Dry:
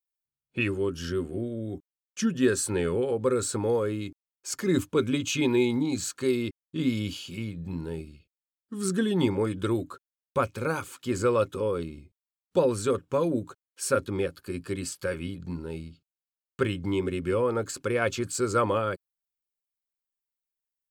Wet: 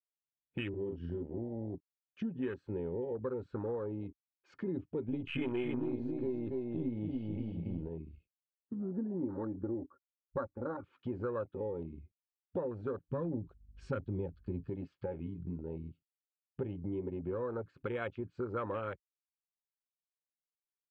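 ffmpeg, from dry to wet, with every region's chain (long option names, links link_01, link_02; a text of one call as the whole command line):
ffmpeg -i in.wav -filter_complex "[0:a]asettb=1/sr,asplit=3[link_01][link_02][link_03];[link_01]atrim=end=0.694[link_04];[link_02]atrim=start=0.69:end=1.23,asetpts=PTS-STARTPTS,afade=type=in:duration=0.004:curve=qsin,afade=type=out:start_time=0.536:duration=0.004:curve=qsin,equalizer=frequency=860:width_type=o:width=1.9:gain=-5,asplit=2[link_05][link_06];[link_06]adelay=46,volume=-5dB[link_07];[link_05][link_07]amix=inputs=2:normalize=0,atrim=end_sample=23814[link_08];[link_03]atrim=start=1.226[link_09];[link_04][link_08]acrossfade=duration=0.004:curve1=hsin:curve2=qsin[link_10];[link_10][link_09]acrossfade=duration=0.004:curve1=qsin:curve2=hsin,asettb=1/sr,asplit=3[link_11][link_12][link_13];[link_11]atrim=end=5.084[link_14];[link_12]atrim=start=5.08:end=7.88,asetpts=PTS-STARTPTS,afade=type=in:duration=0.004:curve=qsin,afade=type=out:start_time=2.796:duration=0.004:curve=qsin,aeval=exprs='if(lt(val(0),0),0.708*val(0),val(0))':channel_layout=same,acontrast=32,aecho=1:1:281|537:0.631|0.266,atrim=end_sample=123480[link_15];[link_13]atrim=start=7.876[link_16];[link_14][link_15]acrossfade=duration=0.004:curve1=hsin:curve2=qsin[link_17];[link_17][link_16]acrossfade=duration=0.004:curve1=qsin:curve2=hsin,asettb=1/sr,asplit=3[link_18][link_19][link_20];[link_18]atrim=end=8.754[link_21];[link_19]atrim=start=8.75:end=10.84,asetpts=PTS-STARTPTS,afade=type=in:duration=0.004:curve=qsin,afade=type=out:start_time=2.086:duration=0.004:curve=qsin,lowpass=frequency=1500:width=0.5412,lowpass=frequency=1500:width=1.3066,aecho=1:1:3.5:0.57,atrim=end_sample=92169[link_22];[link_20]atrim=start=10.836[link_23];[link_21][link_22]acrossfade=duration=0.004:curve1=hsin:curve2=qsin[link_24];[link_24][link_23]acrossfade=duration=0.004:curve1=qsin:curve2=hsin,asettb=1/sr,asplit=3[link_25][link_26][link_27];[link_25]atrim=end=13.114[link_28];[link_26]atrim=start=13.11:end=14.7,asetpts=PTS-STARTPTS,afade=type=in:duration=0.004:curve=qsin,afade=type=out:start_time=1.586:duration=0.004:curve=qsin,bass=frequency=250:gain=10,treble=frequency=4000:gain=13,aeval=exprs='val(0)+0.00282*(sin(2*PI*50*n/s)+sin(2*PI*2*50*n/s)/2+sin(2*PI*3*50*n/s)/3+sin(2*PI*4*50*n/s)/4+sin(2*PI*5*50*n/s)/5)':channel_layout=same[link_29];[link_27]atrim=start=14.696[link_30];[link_28][link_29]acrossfade=duration=0.004:curve1=hsin:curve2=qsin[link_31];[link_31][link_30]acrossfade=duration=0.004:curve1=qsin:curve2=hsin,lowpass=frequency=2900:width=0.5412,lowpass=frequency=2900:width=1.3066,afwtdn=0.0316,acompressor=threshold=-42dB:ratio=3,volume=2.5dB" out.wav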